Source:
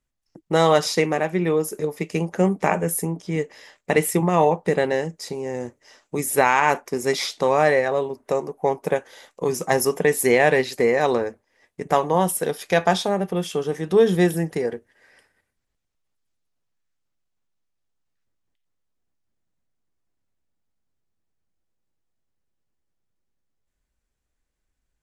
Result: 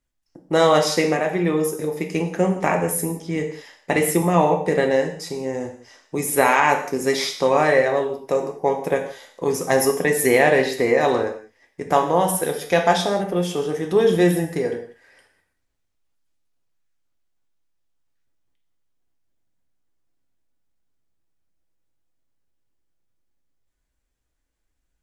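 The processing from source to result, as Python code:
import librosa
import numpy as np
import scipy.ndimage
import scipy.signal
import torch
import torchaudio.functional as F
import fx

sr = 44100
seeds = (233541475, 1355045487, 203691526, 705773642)

y = fx.rev_gated(x, sr, seeds[0], gate_ms=220, shape='falling', drr_db=3.5)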